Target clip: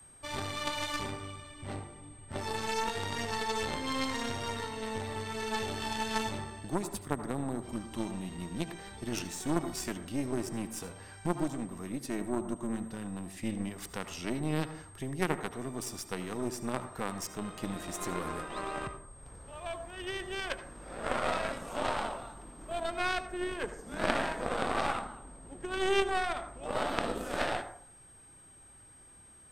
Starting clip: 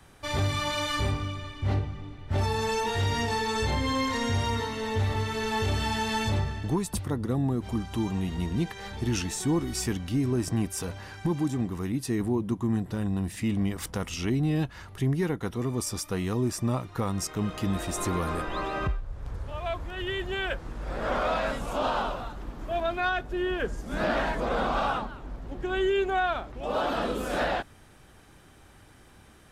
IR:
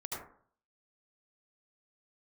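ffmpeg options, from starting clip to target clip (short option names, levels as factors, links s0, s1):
-filter_complex "[0:a]acrossover=split=150[s0][s1];[s0]acompressor=threshold=0.00794:ratio=6[s2];[s2][s1]amix=inputs=2:normalize=0,aeval=exprs='0.188*(cos(1*acos(clip(val(0)/0.188,-1,1)))-cos(1*PI/2))+0.0422*(cos(2*acos(clip(val(0)/0.188,-1,1)))-cos(2*PI/2))':c=same,aeval=exprs='val(0)+0.00562*sin(2*PI*8400*n/s)':c=same,aeval=exprs='0.266*(cos(1*acos(clip(val(0)/0.266,-1,1)))-cos(1*PI/2))+0.0531*(cos(2*acos(clip(val(0)/0.266,-1,1)))-cos(2*PI/2))+0.0596*(cos(3*acos(clip(val(0)/0.266,-1,1)))-cos(3*PI/2))':c=same,asplit=2[s3][s4];[1:a]atrim=start_sample=2205[s5];[s4][s5]afir=irnorm=-1:irlink=0,volume=0.335[s6];[s3][s6]amix=inputs=2:normalize=0"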